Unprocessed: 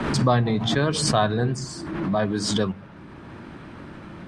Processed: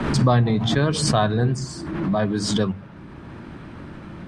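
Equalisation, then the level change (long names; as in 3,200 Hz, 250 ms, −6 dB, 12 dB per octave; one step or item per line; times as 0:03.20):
low-shelf EQ 170 Hz +6.5 dB
mains-hum notches 50/100 Hz
0.0 dB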